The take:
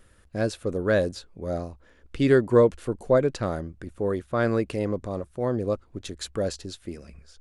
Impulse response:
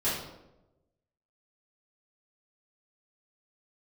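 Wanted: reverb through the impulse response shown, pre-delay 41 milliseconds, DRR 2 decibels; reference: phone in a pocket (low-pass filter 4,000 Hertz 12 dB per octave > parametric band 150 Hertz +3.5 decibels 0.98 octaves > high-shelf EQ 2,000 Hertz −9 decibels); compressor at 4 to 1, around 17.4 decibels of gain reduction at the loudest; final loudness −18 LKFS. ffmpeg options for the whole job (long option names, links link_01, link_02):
-filter_complex "[0:a]acompressor=threshold=-35dB:ratio=4,asplit=2[link_01][link_02];[1:a]atrim=start_sample=2205,adelay=41[link_03];[link_02][link_03]afir=irnorm=-1:irlink=0,volume=-11.5dB[link_04];[link_01][link_04]amix=inputs=2:normalize=0,lowpass=4000,equalizer=frequency=150:width_type=o:width=0.98:gain=3.5,highshelf=frequency=2000:gain=-9,volume=17.5dB"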